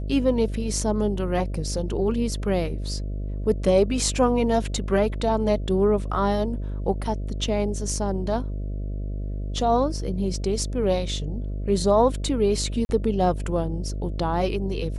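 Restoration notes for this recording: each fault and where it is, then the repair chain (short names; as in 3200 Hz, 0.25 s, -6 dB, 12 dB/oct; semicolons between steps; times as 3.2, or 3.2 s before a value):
buzz 50 Hz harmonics 13 -29 dBFS
12.85–12.89 gap 41 ms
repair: de-hum 50 Hz, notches 13; interpolate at 12.85, 41 ms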